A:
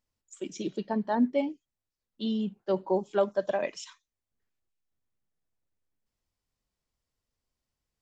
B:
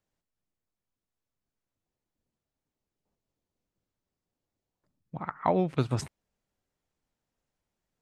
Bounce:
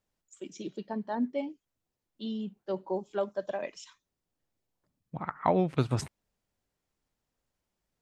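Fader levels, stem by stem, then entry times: −5.5, 0.0 decibels; 0.00, 0.00 seconds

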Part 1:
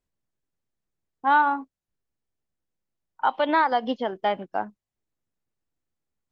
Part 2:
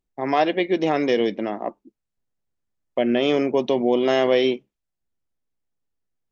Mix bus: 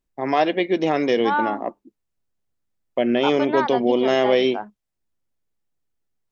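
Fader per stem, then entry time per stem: −3.0, +0.5 decibels; 0.00, 0.00 seconds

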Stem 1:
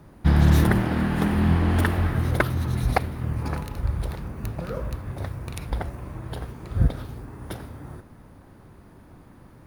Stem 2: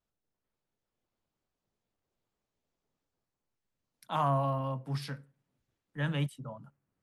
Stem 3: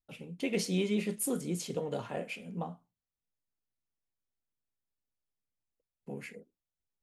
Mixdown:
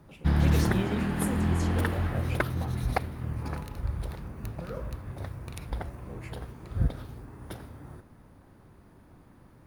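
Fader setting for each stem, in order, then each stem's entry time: −6.0 dB, muted, −3.5 dB; 0.00 s, muted, 0.00 s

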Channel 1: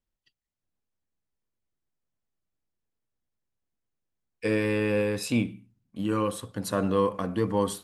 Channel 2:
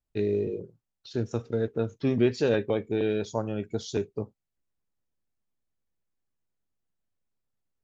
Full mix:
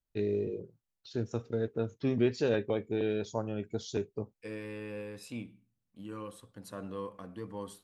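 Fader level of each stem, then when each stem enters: −15.5, −4.5 decibels; 0.00, 0.00 seconds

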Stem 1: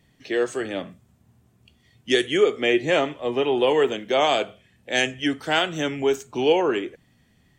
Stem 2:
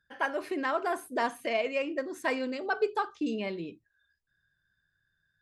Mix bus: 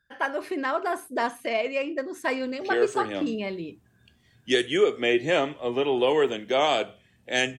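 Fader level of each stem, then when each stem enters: −2.5, +3.0 decibels; 2.40, 0.00 seconds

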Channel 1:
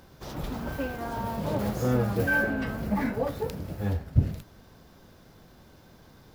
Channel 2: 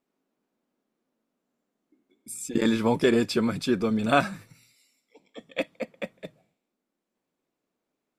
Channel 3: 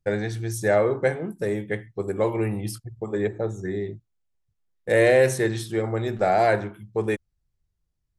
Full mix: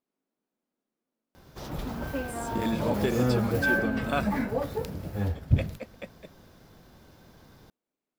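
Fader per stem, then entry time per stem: −0.5 dB, −7.5 dB, muted; 1.35 s, 0.00 s, muted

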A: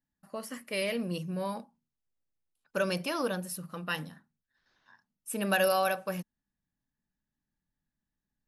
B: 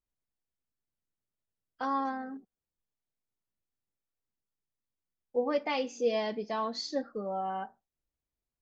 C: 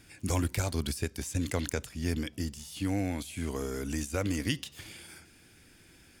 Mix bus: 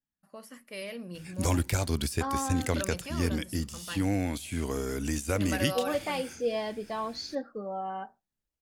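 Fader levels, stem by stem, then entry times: −7.5, −1.0, +2.5 decibels; 0.00, 0.40, 1.15 seconds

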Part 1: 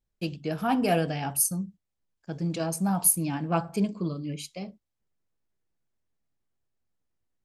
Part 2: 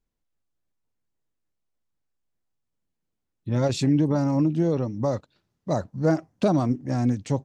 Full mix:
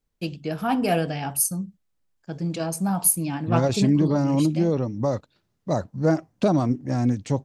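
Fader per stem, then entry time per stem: +2.0, +1.0 decibels; 0.00, 0.00 seconds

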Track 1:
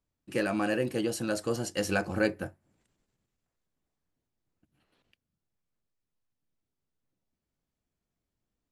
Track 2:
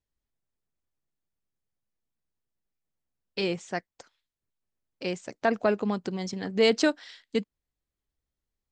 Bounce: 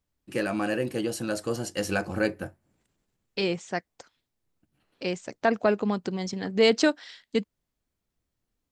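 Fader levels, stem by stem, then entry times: +1.0, +1.5 decibels; 0.00, 0.00 seconds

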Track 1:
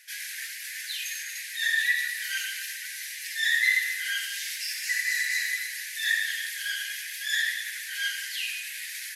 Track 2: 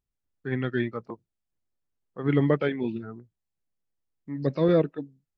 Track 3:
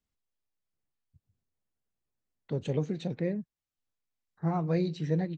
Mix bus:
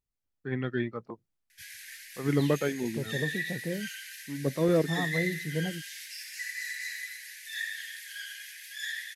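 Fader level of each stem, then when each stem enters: −9.5, −3.5, −3.0 decibels; 1.50, 0.00, 0.45 seconds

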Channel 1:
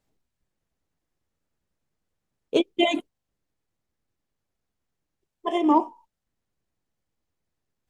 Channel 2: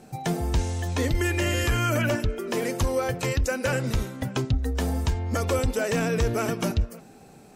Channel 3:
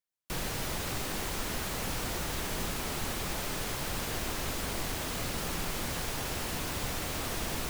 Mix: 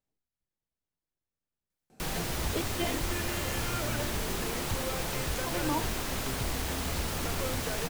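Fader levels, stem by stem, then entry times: −13.0, −12.0, +0.5 decibels; 0.00, 1.90, 1.70 seconds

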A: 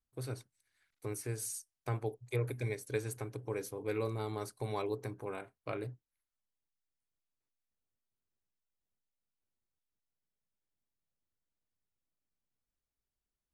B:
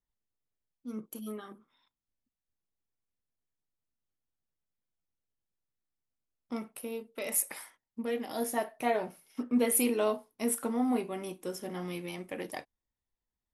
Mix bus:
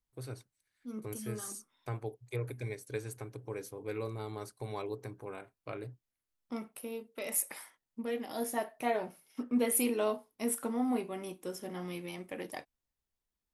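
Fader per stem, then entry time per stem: −2.5, −2.5 decibels; 0.00, 0.00 seconds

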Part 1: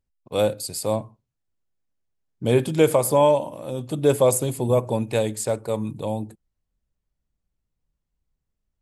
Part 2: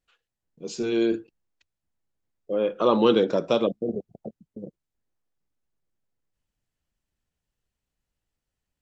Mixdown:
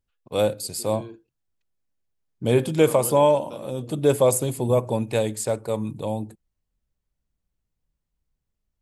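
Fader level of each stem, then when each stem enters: −0.5, −18.0 decibels; 0.00, 0.00 seconds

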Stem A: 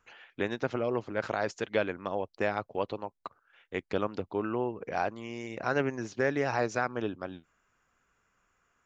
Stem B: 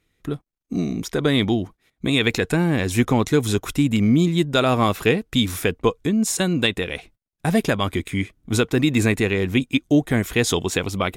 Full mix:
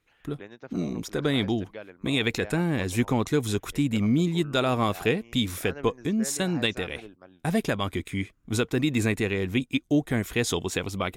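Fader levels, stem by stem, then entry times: −12.5, −6.0 decibels; 0.00, 0.00 seconds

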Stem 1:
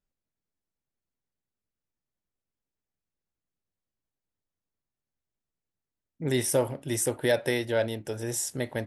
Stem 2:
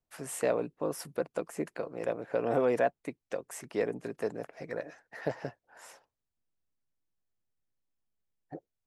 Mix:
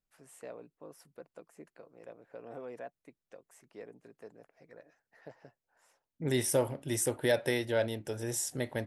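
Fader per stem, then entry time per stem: −3.5, −17.0 decibels; 0.00, 0.00 seconds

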